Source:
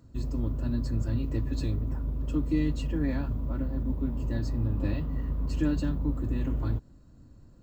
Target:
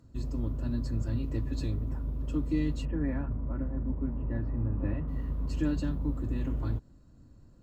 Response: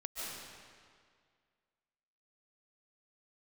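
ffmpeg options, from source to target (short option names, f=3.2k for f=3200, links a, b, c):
-filter_complex "[0:a]asettb=1/sr,asplit=3[a][b][c];[a]atrim=end=2.854[d];[b]atrim=start=2.85:end=5.08,asetpts=PTS-STARTPTS,afade=t=in:d=0.004:c=qsin,afade=t=out:st=2.226:d=0.004:c=qsin,lowpass=f=2.2k:w=0.5412,lowpass=f=2.2k:w=1.3066[e];[c]atrim=start=5.076[f];[d][e]acrossfade=d=0.004:c1=hsin:c2=qsin[g];[g][f]acrossfade=d=0.004:c1=qsin:c2=hsin[h];[1:a]atrim=start_sample=2205,atrim=end_sample=3969,asetrate=25137,aresample=44100[i];[h][i]afir=irnorm=-1:irlink=0"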